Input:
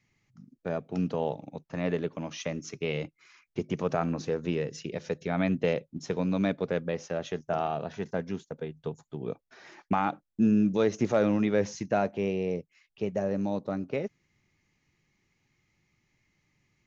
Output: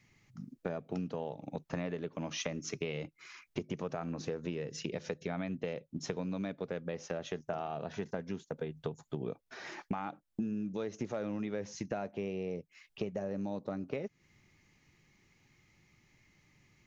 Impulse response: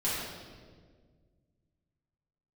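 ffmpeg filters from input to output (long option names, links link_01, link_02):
-af "acompressor=threshold=-39dB:ratio=12,volume=5.5dB"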